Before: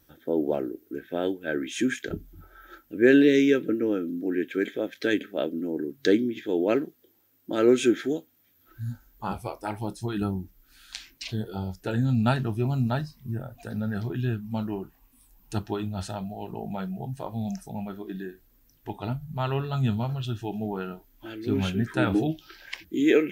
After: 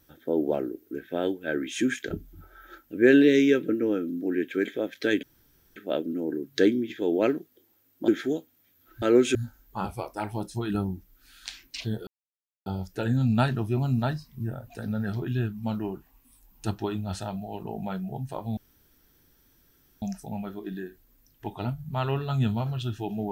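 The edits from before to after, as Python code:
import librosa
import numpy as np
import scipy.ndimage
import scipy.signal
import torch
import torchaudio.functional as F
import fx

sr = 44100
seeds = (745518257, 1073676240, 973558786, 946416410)

y = fx.edit(x, sr, fx.insert_room_tone(at_s=5.23, length_s=0.53),
    fx.move(start_s=7.55, length_s=0.33, to_s=8.82),
    fx.insert_silence(at_s=11.54, length_s=0.59),
    fx.insert_room_tone(at_s=17.45, length_s=1.45), tone=tone)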